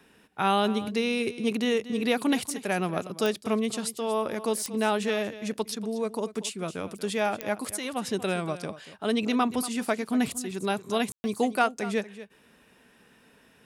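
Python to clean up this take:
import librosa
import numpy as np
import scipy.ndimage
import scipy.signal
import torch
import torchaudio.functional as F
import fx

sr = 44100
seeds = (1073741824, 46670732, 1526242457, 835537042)

y = fx.fix_declick_ar(x, sr, threshold=10.0)
y = fx.fix_ambience(y, sr, seeds[0], print_start_s=12.27, print_end_s=12.77, start_s=11.12, end_s=11.24)
y = fx.fix_echo_inverse(y, sr, delay_ms=235, level_db=-15.0)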